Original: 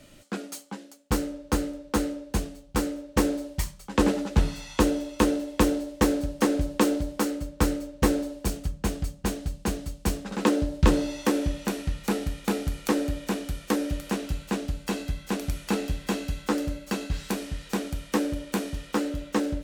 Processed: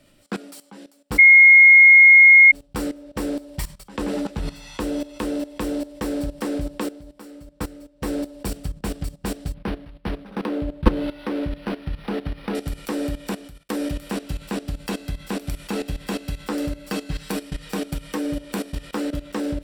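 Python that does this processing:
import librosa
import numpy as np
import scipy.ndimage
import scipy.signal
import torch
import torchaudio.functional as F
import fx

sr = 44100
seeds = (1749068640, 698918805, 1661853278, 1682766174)

y = fx.resample_linear(x, sr, factor=6, at=(9.54, 12.55))
y = fx.comb(y, sr, ms=6.5, depth=0.49, at=(16.89, 18.38))
y = fx.edit(y, sr, fx.bleep(start_s=1.18, length_s=1.34, hz=2150.0, db=-11.5),
    fx.fade_down_up(start_s=6.68, length_s=1.45, db=-10.0, fade_s=0.22),
    fx.fade_out_span(start_s=13.28, length_s=0.41), tone=tone)
y = fx.peak_eq(y, sr, hz=65.0, db=-14.0, octaves=0.22)
y = fx.notch(y, sr, hz=6500.0, q=6.3)
y = fx.level_steps(y, sr, step_db=16)
y = y * 10.0 ** (7.0 / 20.0)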